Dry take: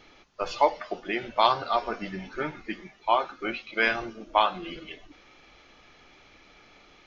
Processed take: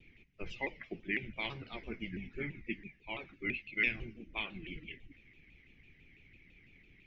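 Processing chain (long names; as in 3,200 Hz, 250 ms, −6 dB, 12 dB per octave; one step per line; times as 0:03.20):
drawn EQ curve 140 Hz 0 dB, 400 Hz −11 dB, 600 Hz −24 dB, 1,300 Hz −27 dB, 2,200 Hz +1 dB, 4,200 Hz −21 dB
harmonic and percussive parts rebalanced harmonic −8 dB
low-shelf EQ 490 Hz +4 dB
pitch modulation by a square or saw wave saw down 6 Hz, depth 160 cents
level +1 dB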